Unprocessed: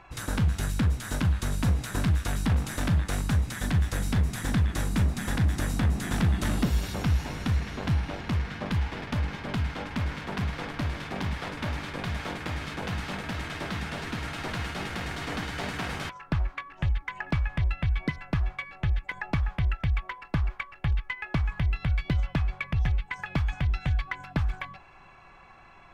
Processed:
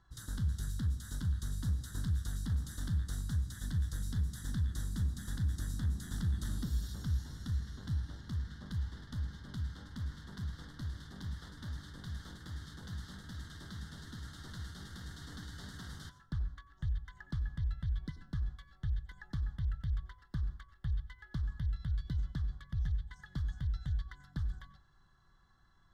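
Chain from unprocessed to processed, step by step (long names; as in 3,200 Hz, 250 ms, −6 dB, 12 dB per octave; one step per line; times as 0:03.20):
Chebyshev band-stop filter 1,700–3,500 Hz, order 2
guitar amp tone stack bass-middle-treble 6-0-2
on a send: convolution reverb RT60 0.40 s, pre-delay 85 ms, DRR 16 dB
on the sum: level +5 dB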